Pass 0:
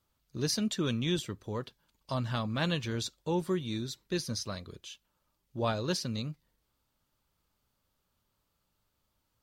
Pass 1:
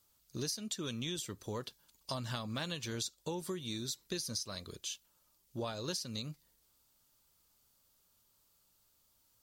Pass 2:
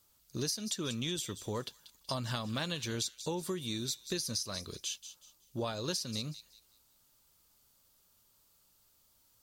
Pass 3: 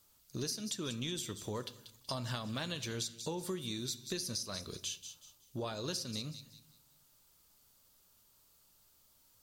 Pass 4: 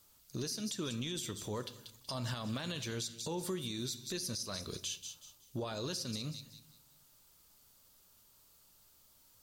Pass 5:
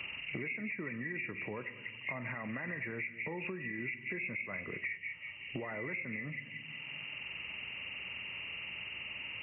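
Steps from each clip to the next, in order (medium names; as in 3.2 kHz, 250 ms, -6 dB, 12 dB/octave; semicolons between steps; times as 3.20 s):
tone controls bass -3 dB, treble +12 dB; compression 16:1, threshold -35 dBFS, peak gain reduction 16.5 dB
feedback echo behind a high-pass 187 ms, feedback 30%, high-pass 3.3 kHz, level -10 dB; trim +3 dB
compression 1.5:1, threshold -43 dBFS, peak gain reduction 5 dB; on a send at -13 dB: reverberation RT60 0.70 s, pre-delay 3 ms; on the sum: trim +1 dB
peak limiter -31.5 dBFS, peak gain reduction 8.5 dB; trim +2.5 dB
knee-point frequency compression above 1.6 kHz 4:1; high-pass 130 Hz 12 dB/octave; three bands compressed up and down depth 100%; trim -2 dB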